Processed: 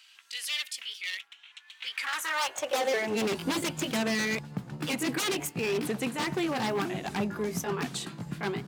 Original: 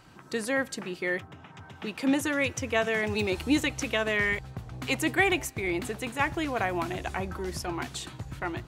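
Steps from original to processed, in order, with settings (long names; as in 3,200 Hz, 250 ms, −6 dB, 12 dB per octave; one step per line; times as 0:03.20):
pitch shifter swept by a sawtooth +3 semitones, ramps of 979 ms
wave folding −26.5 dBFS
high-pass filter sweep 2,900 Hz → 180 Hz, 0:01.73–0:03.37
level +1.5 dB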